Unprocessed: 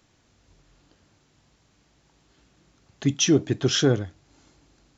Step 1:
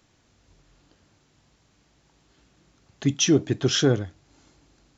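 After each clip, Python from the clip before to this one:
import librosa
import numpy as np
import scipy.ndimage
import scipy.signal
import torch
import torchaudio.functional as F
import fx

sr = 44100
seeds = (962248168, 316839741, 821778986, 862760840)

y = x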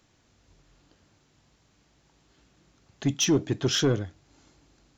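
y = 10.0 ** (-13.0 / 20.0) * np.tanh(x / 10.0 ** (-13.0 / 20.0))
y = y * librosa.db_to_amplitude(-1.5)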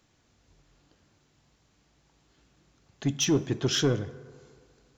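y = fx.rider(x, sr, range_db=10, speed_s=0.5)
y = fx.rev_fdn(y, sr, rt60_s=2.0, lf_ratio=0.75, hf_ratio=0.4, size_ms=40.0, drr_db=14.0)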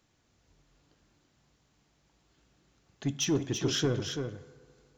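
y = x + 10.0 ** (-6.5 / 20.0) * np.pad(x, (int(335 * sr / 1000.0), 0))[:len(x)]
y = y * librosa.db_to_amplitude(-4.0)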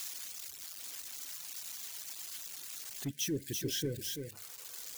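y = x + 0.5 * 10.0 ** (-24.5 / 20.0) * np.diff(np.sign(x), prepend=np.sign(x[:1]))
y = fx.spec_box(y, sr, start_s=3.1, length_s=1.23, low_hz=600.0, high_hz=1500.0, gain_db=-21)
y = fx.dereverb_blind(y, sr, rt60_s=0.82)
y = y * librosa.db_to_amplitude(-7.0)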